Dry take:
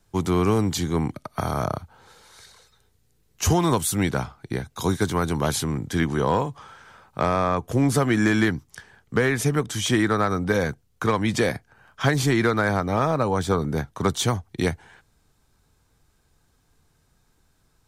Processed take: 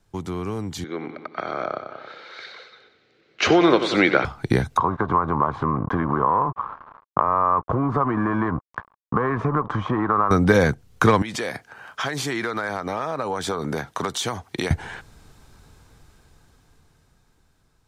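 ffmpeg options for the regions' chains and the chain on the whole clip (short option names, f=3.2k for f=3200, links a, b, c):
-filter_complex "[0:a]asettb=1/sr,asplit=3[a][b][c];[a]atrim=end=0.844[d];[b]atrim=start=0.84:end=4.25,asetpts=PTS-STARTPTS,afade=t=in:d=0.004:c=qsin,afade=t=out:st=3.406:d=0.004:c=qsin,highpass=340,equalizer=f=340:t=q:w=4:g=5,equalizer=f=550:t=q:w=4:g=5,equalizer=f=940:t=q:w=4:g=-8,equalizer=f=1.4k:t=q:w=4:g=6,equalizer=f=2.2k:t=q:w=4:g=7,equalizer=f=4.1k:t=q:w=4:g=3,lowpass=f=4.2k:w=0.5412,lowpass=f=4.2k:w=1.3066,aecho=1:1:92|184|276|368|460:0.266|0.133|0.0665|0.0333|0.0166,atrim=end_sample=150381[e];[c]atrim=start=4.246[f];[d][e]acrossfade=d=0.004:c1=hsin:c2=qsin[g];[g][f]acrossfade=d=0.004:c1=qsin:c2=hsin,asettb=1/sr,asplit=3[h][i][j];[h]atrim=end=4.774[k];[i]atrim=start=4.77:end=10.31,asetpts=PTS-STARTPTS,afade=t=in:d=0.004:c=qsin,afade=t=out:st=5.536:d=0.004:c=qsin,acompressor=threshold=-30dB:ratio=6:attack=3.2:release=140:knee=1:detection=peak,aeval=exprs='sgn(val(0))*max(abs(val(0))-0.00596,0)':c=same,lowpass=f=1.1k:t=q:w=7.2[l];[j]atrim=start=10.306[m];[k][l]acrossfade=d=0.004:c1=hsin:c2=qsin[n];[n][m]acrossfade=d=0.004:c1=qsin:c2=hsin,asettb=1/sr,asplit=3[o][p][q];[o]atrim=end=11.224[r];[p]atrim=start=11.22:end=14.71,asetpts=PTS-STARTPTS,afade=t=in:d=0.004:c=qsin,afade=t=out:st=3.486:d=0.004:c=qsin,highpass=f=520:p=1,acompressor=threshold=-37dB:ratio=6:attack=3.2:release=140:knee=1:detection=peak[s];[q]atrim=start=14.706[t];[r][s]acrossfade=d=0.004:c1=hsin:c2=qsin[u];[u][t]acrossfade=d=0.004:c1=qsin:c2=hsin,acompressor=threshold=-32dB:ratio=2,highshelf=f=7.7k:g=-7.5,dynaudnorm=f=410:g=11:m=15.5dB"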